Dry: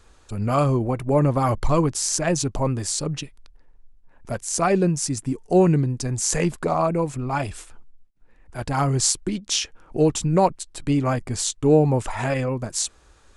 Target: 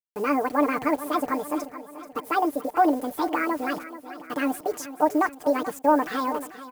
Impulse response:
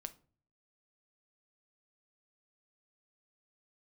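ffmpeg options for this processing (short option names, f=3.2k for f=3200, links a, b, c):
-af "acompressor=threshold=-38dB:ratio=1.5,asetrate=87759,aresample=44100,highpass=320,lowpass=5.7k,aecho=1:1:6.7:0.67,agate=range=-33dB:threshold=-41dB:ratio=3:detection=peak,acontrast=43,acrusher=bits=6:mix=0:aa=0.000001,equalizer=f=3.6k:t=o:w=2.5:g=-11.5,aecho=1:1:434|868|1302|1736|2170:0.2|0.106|0.056|0.0297|0.0157,volume=1dB"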